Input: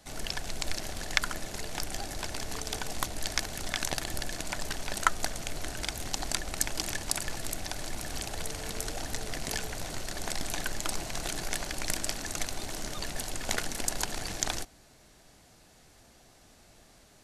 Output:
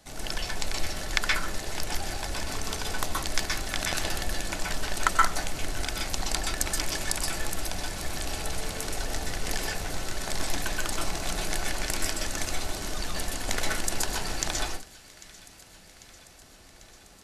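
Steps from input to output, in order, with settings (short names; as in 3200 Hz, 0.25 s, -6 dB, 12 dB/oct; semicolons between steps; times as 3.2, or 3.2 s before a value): thin delay 0.795 s, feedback 70%, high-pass 1600 Hz, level -19.5 dB; reverb RT60 0.30 s, pre-delay 0.12 s, DRR -2 dB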